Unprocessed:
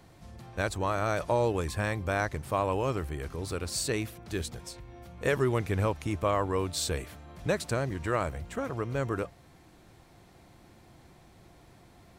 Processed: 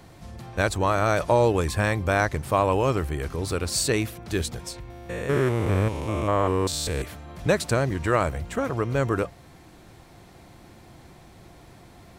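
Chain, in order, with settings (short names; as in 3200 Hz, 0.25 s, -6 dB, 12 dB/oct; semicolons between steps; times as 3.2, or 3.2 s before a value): 4.9–7.02 stepped spectrum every 0.2 s; gain +7 dB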